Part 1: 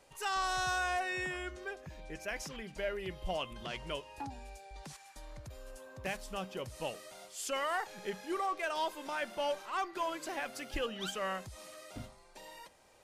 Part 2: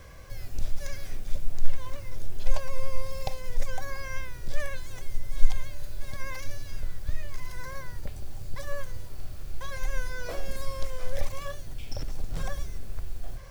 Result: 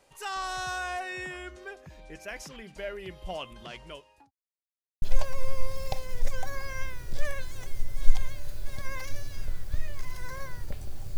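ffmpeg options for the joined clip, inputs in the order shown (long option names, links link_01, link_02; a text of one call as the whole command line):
ffmpeg -i cue0.wav -i cue1.wav -filter_complex "[0:a]apad=whole_dur=11.17,atrim=end=11.17,asplit=2[link_01][link_02];[link_01]atrim=end=4.31,asetpts=PTS-STARTPTS,afade=type=out:start_time=3.39:duration=0.92:curve=qsin[link_03];[link_02]atrim=start=4.31:end=5.02,asetpts=PTS-STARTPTS,volume=0[link_04];[1:a]atrim=start=2.37:end=8.52,asetpts=PTS-STARTPTS,afade=type=in:duration=0.004:curve=hsin[link_05];[link_03][link_04][link_05]concat=n=3:v=0:a=1" out.wav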